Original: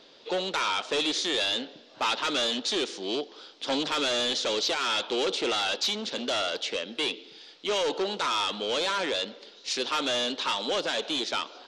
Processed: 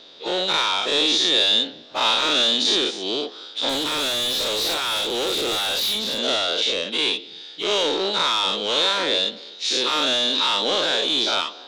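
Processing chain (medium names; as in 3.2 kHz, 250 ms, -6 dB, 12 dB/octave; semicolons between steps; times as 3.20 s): every event in the spectrogram widened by 120 ms; peaking EQ 3.7 kHz +9.5 dB 0.22 oct; 3.69–6.19 s: overload inside the chain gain 21 dB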